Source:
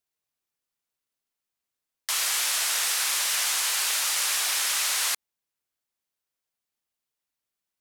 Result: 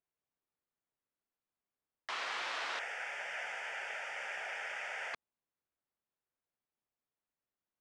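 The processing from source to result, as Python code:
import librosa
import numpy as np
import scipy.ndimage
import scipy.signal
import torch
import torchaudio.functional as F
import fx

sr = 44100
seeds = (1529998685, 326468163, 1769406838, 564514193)

y = fx.low_shelf(x, sr, hz=150.0, db=-4.5)
y = fx.fixed_phaser(y, sr, hz=1100.0, stages=6, at=(2.79, 5.14))
y = fx.spacing_loss(y, sr, db_at_10k=43)
y = F.gain(torch.from_numpy(y), 1.5).numpy()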